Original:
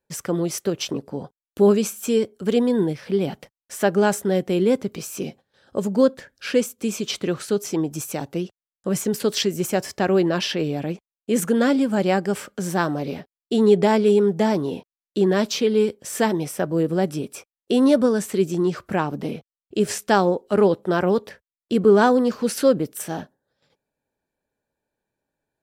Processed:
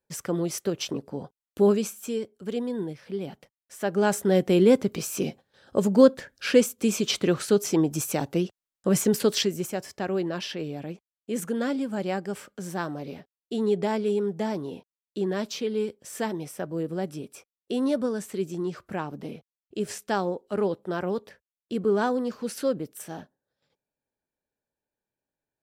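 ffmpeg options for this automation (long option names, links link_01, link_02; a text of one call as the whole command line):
ffmpeg -i in.wav -af "volume=7.5dB,afade=type=out:start_time=1.62:duration=0.57:silence=0.473151,afade=type=in:start_time=3.79:duration=0.66:silence=0.266073,afade=type=out:start_time=9.1:duration=0.63:silence=0.316228" out.wav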